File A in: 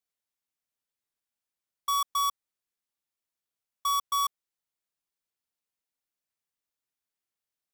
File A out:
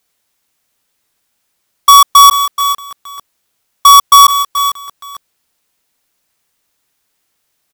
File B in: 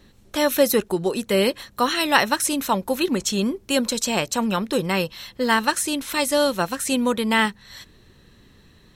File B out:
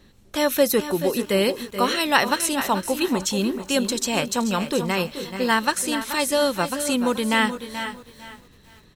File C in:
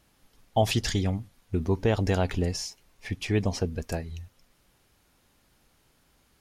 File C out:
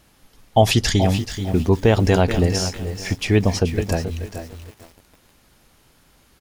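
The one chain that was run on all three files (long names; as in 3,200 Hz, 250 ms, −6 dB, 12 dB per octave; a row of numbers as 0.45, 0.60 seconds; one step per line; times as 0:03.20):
single-tap delay 430 ms −11.5 dB
feedback echo at a low word length 451 ms, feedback 35%, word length 7 bits, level −13 dB
normalise the peak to −2 dBFS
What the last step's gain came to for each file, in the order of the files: +23.5, −1.0, +8.5 decibels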